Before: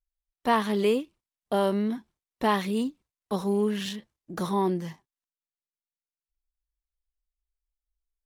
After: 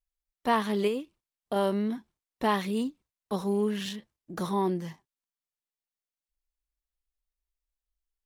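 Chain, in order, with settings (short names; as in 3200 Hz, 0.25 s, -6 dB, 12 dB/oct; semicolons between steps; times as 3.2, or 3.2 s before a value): 0.87–1.56 compressor, threshold -24 dBFS, peak gain reduction 5 dB; gain -2 dB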